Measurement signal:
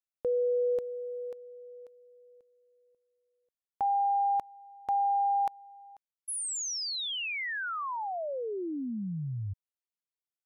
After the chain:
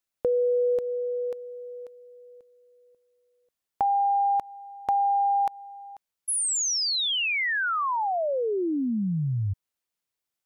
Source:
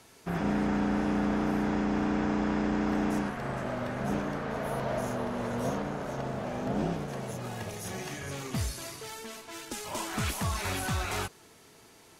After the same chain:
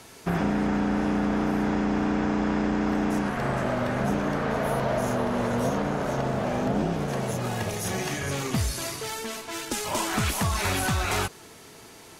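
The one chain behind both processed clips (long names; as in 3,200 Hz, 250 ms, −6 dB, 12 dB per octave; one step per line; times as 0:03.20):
downward compressor, threshold −30 dBFS
level +8.5 dB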